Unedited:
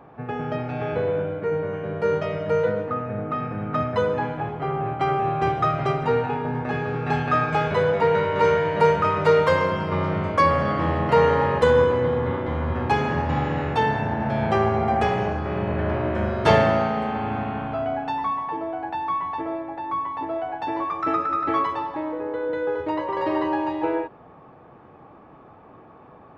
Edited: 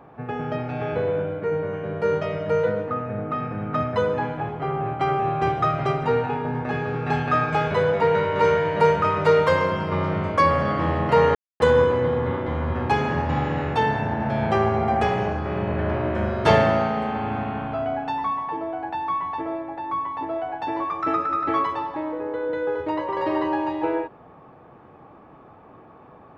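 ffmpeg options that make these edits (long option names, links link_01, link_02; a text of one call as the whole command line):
ffmpeg -i in.wav -filter_complex "[0:a]asplit=3[link_01][link_02][link_03];[link_01]atrim=end=11.35,asetpts=PTS-STARTPTS,afade=type=out:start_time=11.346:duration=0.004:curve=hsin[link_04];[link_02]atrim=start=11.35:end=11.6,asetpts=PTS-STARTPTS,volume=0[link_05];[link_03]atrim=start=11.6,asetpts=PTS-STARTPTS,afade=type=in:duration=0.004:curve=hsin[link_06];[link_04][link_05][link_06]concat=n=3:v=0:a=1" out.wav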